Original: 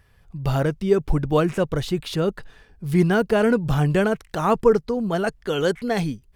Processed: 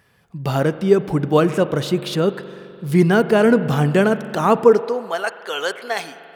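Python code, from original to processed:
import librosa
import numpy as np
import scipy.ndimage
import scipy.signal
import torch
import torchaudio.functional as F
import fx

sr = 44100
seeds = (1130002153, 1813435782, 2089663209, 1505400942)

y = fx.rev_spring(x, sr, rt60_s=2.8, pass_ms=(42,), chirp_ms=75, drr_db=12.5)
y = fx.filter_sweep_highpass(y, sr, from_hz=170.0, to_hz=800.0, start_s=4.58, end_s=5.16, q=0.9)
y = F.gain(torch.from_numpy(y), 4.0).numpy()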